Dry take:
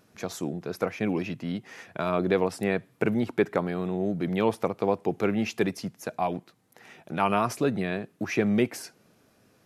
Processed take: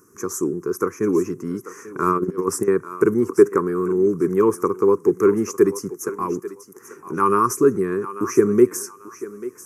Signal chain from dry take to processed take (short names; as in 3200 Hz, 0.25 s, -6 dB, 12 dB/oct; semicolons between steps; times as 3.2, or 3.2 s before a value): EQ curve 220 Hz 0 dB, 400 Hz +14 dB, 680 Hz -23 dB, 1100 Hz +12 dB, 3800 Hz -25 dB, 6000 Hz +11 dB; 2.02–2.68 negative-ratio compressor -22 dBFS, ratio -0.5; thinning echo 0.841 s, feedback 25%, high-pass 420 Hz, level -13 dB; gain +1.5 dB